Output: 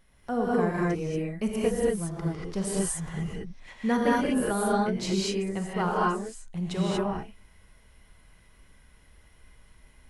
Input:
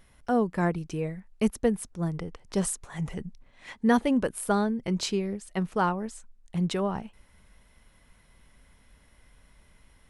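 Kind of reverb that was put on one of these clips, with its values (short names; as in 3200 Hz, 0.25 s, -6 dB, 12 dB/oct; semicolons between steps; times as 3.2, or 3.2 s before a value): non-linear reverb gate 0.26 s rising, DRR -6 dB; gain -5.5 dB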